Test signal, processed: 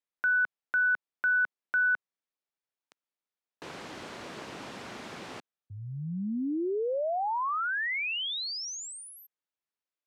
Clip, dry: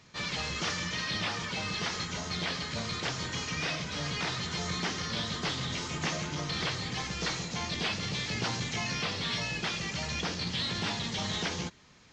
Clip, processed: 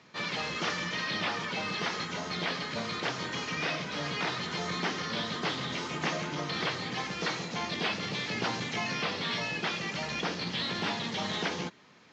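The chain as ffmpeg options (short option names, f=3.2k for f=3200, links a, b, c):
-af "highpass=200,lowpass=7.2k,highshelf=f=4.5k:g=-10.5,volume=3.5dB"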